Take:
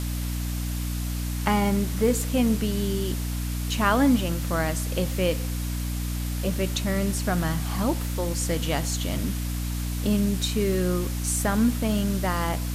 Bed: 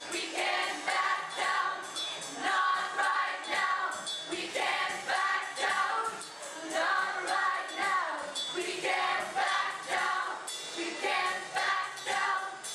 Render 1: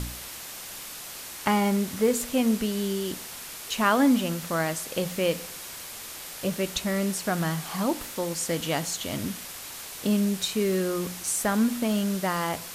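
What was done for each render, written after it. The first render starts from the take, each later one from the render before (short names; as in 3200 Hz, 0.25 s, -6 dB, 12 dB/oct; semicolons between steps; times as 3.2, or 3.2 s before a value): de-hum 60 Hz, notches 5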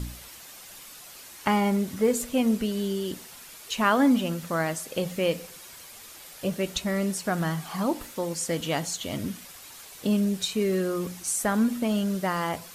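denoiser 8 dB, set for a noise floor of -40 dBFS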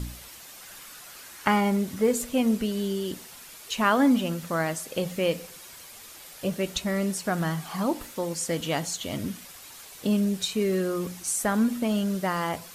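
0.61–1.61 bell 1500 Hz +6 dB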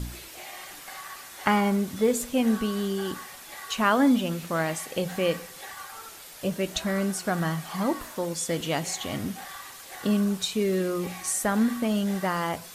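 add bed -12.5 dB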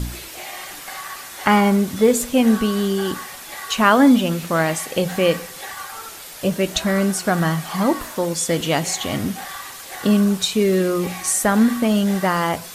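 gain +8 dB; limiter -2 dBFS, peak gain reduction 2.5 dB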